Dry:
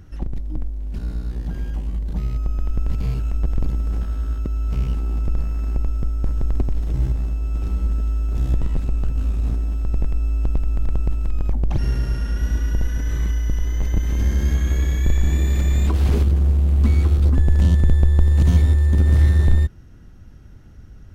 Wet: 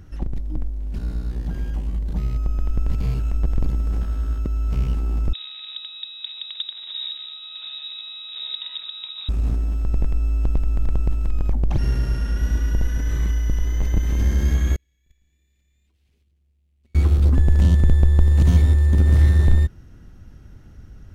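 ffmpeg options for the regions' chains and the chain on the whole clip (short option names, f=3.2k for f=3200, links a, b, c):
-filter_complex "[0:a]asettb=1/sr,asplit=3[a][b][c];[a]atrim=end=5.334[d];[b]atrim=start=5.33:end=9.29,asetpts=PTS-STARTPTS,afade=t=in:d=0.004:c=qsin,afade=t=out:st=3.956:d=0.004:c=qsin,highpass=150,bandreject=f=760:w=6.5,lowpass=f=3.3k:t=q:w=0.5098,lowpass=f=3.3k:t=q:w=0.6013,lowpass=f=3.3k:t=q:w=0.9,lowpass=f=3.3k:t=q:w=2.563,afreqshift=-3900[e];[c]atrim=start=9.286[f];[d][e]acrossfade=d=0.004:c1=hsin:c2=qsin[g];[g][f]acrossfade=d=0.004:c1=qsin:c2=hsin,asettb=1/sr,asplit=3[h][i][j];[h]atrim=end=14.764[k];[i]atrim=start=14.76:end=16.95,asetpts=PTS-STARTPTS,afade=t=in:d=0.004:c=qsin,afade=t=out:st=2.186:d=0.004:c=qsin,agate=range=-49dB:threshold=-8dB:ratio=16:release=100:detection=peak,highshelf=f=1.7k:t=q:w=1.5:g=10.5[l];[j]atrim=start=16.946[m];[k][l]acrossfade=d=0.004:c1=hsin:c2=qsin[n];[n][m]acrossfade=d=0.004:c1=qsin:c2=hsin"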